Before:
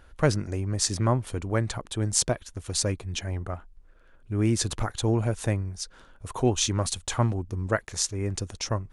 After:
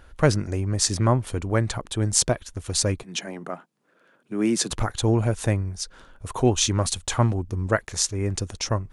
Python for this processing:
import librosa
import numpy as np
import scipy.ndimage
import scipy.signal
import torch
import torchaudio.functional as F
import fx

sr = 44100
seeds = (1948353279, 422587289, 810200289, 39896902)

y = fx.steep_highpass(x, sr, hz=150.0, slope=48, at=(3.03, 4.71))
y = y * librosa.db_to_amplitude(3.5)